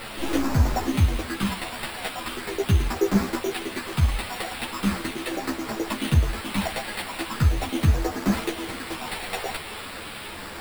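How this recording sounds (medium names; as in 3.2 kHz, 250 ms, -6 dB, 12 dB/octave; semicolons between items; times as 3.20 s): a quantiser's noise floor 6-bit, dither triangular; phasing stages 6, 0.4 Hz, lowest notch 310–2900 Hz; aliases and images of a low sample rate 6.3 kHz, jitter 0%; a shimmering, thickened sound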